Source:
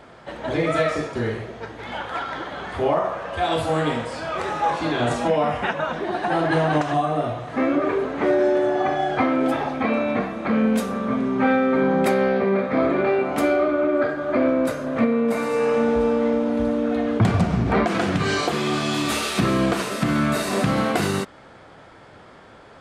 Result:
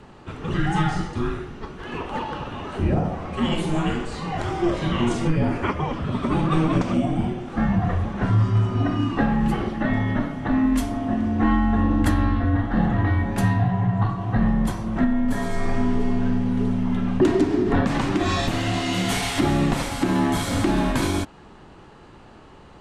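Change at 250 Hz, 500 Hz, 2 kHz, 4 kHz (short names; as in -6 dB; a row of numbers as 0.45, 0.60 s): +1.0, -7.5, -3.5, -1.0 dB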